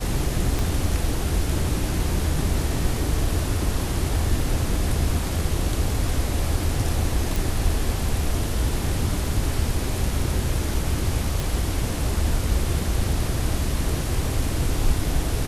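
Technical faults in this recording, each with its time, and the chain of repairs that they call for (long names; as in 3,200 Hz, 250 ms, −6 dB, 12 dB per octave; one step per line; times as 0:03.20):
0:00.59: click
0:07.36: click
0:11.40: click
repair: click removal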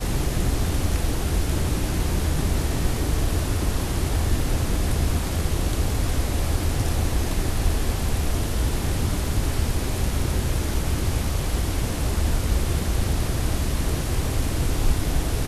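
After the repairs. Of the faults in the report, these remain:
0:00.59: click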